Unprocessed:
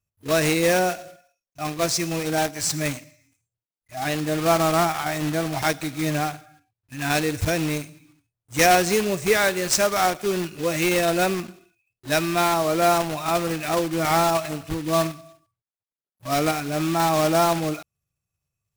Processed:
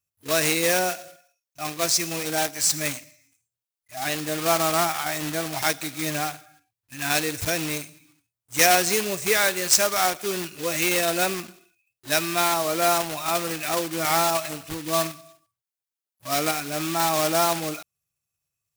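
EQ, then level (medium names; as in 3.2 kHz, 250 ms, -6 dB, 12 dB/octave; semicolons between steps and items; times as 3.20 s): tilt EQ +2 dB/octave; -2.0 dB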